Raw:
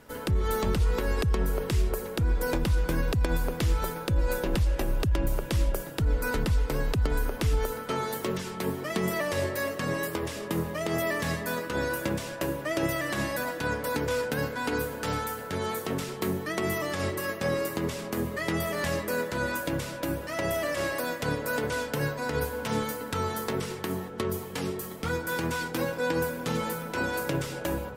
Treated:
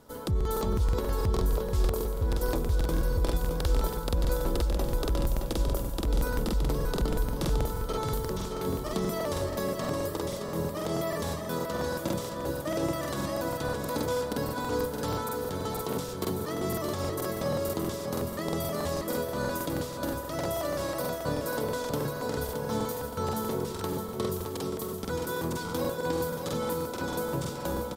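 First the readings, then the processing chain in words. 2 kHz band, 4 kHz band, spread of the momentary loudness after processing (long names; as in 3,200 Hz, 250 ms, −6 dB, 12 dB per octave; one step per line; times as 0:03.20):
−8.0 dB, −2.0 dB, 4 LU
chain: flat-topped bell 2,100 Hz −9 dB 1.1 octaves
on a send: repeating echo 619 ms, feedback 48%, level −6 dB
on the sum: regular buffer underruns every 0.16 s, samples 2,048, repeat, from 0:00.36
level −2 dB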